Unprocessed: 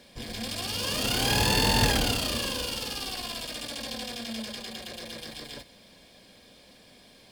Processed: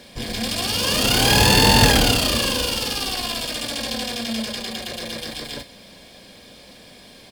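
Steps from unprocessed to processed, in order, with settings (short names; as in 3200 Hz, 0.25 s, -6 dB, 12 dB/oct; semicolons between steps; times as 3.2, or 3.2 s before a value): doubler 35 ms -13 dB; gain +9 dB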